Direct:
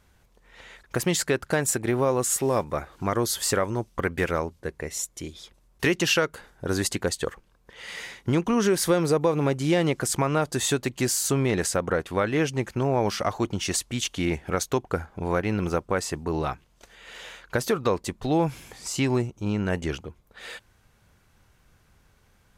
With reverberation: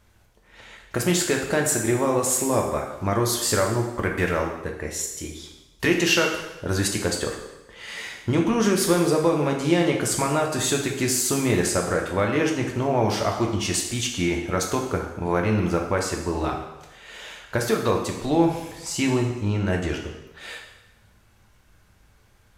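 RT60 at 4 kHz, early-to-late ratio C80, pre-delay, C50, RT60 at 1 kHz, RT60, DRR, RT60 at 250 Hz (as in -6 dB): 1.0 s, 7.5 dB, 3 ms, 5.5 dB, 1.0 s, 1.0 s, 0.5 dB, 0.90 s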